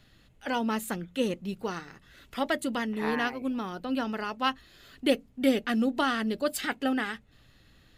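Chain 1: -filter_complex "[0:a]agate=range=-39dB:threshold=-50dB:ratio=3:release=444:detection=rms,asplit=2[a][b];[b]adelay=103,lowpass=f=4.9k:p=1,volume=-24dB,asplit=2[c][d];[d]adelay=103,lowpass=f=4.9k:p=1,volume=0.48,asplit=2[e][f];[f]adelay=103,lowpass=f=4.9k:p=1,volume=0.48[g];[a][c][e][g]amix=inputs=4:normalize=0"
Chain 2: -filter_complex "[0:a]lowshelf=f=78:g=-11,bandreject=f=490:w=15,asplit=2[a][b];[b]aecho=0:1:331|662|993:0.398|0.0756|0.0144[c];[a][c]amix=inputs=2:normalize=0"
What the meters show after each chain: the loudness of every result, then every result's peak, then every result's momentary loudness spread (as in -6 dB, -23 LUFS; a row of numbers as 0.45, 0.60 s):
-30.0, -30.5 LUFS; -11.0, -12.5 dBFS; 9, 11 LU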